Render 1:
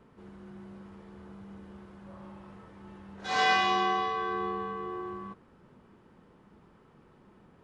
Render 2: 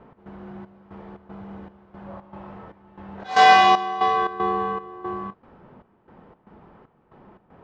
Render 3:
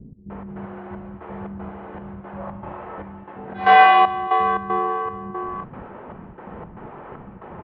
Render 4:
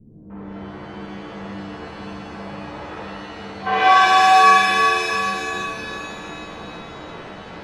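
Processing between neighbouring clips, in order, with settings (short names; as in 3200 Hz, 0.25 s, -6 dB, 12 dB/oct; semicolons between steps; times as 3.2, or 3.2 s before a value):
low-pass opened by the level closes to 2600 Hz, open at -26 dBFS; bell 730 Hz +7.5 dB 0.86 oct; step gate "x.xxx..x" 116 bpm -12 dB; gain +7.5 dB
LPF 2700 Hz 24 dB/oct; reverse; upward compressor, threshold -26 dBFS; reverse; bands offset in time lows, highs 0.3 s, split 270 Hz; gain +2 dB
shimmer reverb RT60 2.5 s, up +7 st, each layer -2 dB, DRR -7.5 dB; gain -8.5 dB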